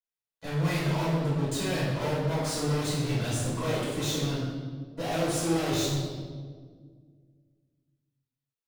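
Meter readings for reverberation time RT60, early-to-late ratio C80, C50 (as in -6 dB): 1.7 s, 2.5 dB, -0.5 dB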